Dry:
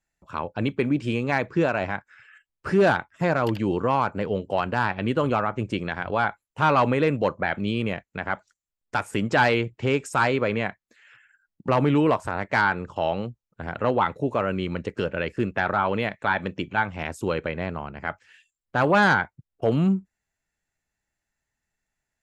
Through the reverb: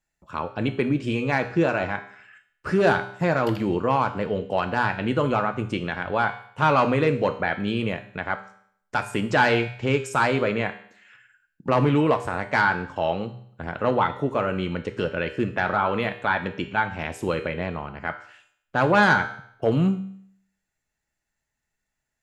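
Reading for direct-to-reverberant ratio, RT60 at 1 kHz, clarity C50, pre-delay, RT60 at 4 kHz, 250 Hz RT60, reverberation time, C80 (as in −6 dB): 7.5 dB, 0.65 s, 12.0 dB, 3 ms, 0.65 s, 0.65 s, 0.65 s, 15.0 dB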